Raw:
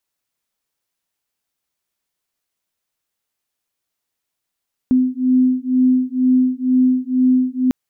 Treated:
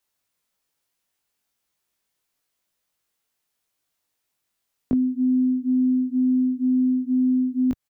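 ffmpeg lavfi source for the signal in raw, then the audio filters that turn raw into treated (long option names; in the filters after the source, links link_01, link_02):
-f lavfi -i "aevalsrc='0.168*(sin(2*PI*254*t)+sin(2*PI*256.1*t))':duration=2.8:sample_rate=44100"
-filter_complex "[0:a]acrossover=split=120[link_01][link_02];[link_02]acompressor=threshold=-24dB:ratio=10[link_03];[link_01][link_03]amix=inputs=2:normalize=0,asplit=2[link_04][link_05];[link_05]adelay=20,volume=-3dB[link_06];[link_04][link_06]amix=inputs=2:normalize=0"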